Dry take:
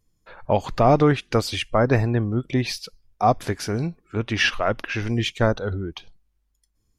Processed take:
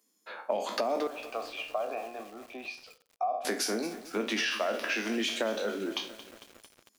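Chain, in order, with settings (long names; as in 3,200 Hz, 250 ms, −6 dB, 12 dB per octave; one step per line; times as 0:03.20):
peak hold with a decay on every bin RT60 0.32 s
Butterworth high-pass 210 Hz 72 dB per octave
high-shelf EQ 4,100 Hz +8 dB
mains-hum notches 60/120/180/240/300/360/420/480/540 Hz
brickwall limiter −14 dBFS, peak gain reduction 9.5 dB
0:01.07–0:03.45: formant filter a
dynamic equaliser 600 Hz, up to +6 dB, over −40 dBFS, Q 3.8
downward compressor 5 to 1, threshold −28 dBFS, peak gain reduction 12 dB
feedback echo at a low word length 226 ms, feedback 80%, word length 7 bits, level −14 dB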